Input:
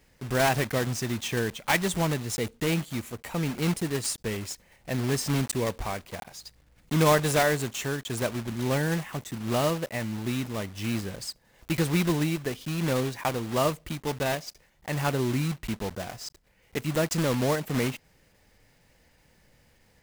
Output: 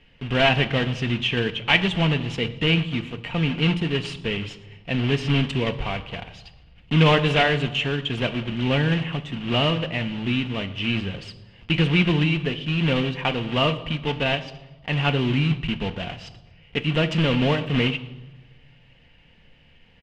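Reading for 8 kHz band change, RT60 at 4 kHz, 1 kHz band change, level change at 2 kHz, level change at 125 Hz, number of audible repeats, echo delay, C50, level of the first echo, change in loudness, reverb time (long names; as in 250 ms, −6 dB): below −10 dB, 0.85 s, +2.5 dB, +7.5 dB, +6.5 dB, 2, 116 ms, 14.5 dB, −21.0 dB, +5.5 dB, 1.1 s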